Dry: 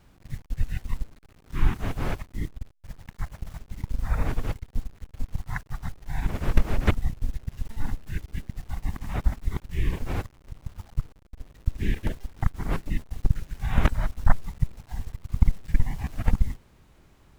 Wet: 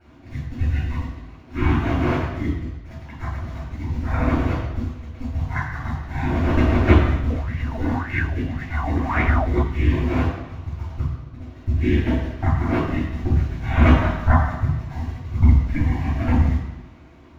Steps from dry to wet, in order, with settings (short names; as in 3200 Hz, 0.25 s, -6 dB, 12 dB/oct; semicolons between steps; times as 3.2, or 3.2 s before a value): reverb RT60 1.1 s, pre-delay 3 ms, DRR -10.5 dB; 7.3–9.63 LFO bell 1.8 Hz 430–2200 Hz +16 dB; gain -11.5 dB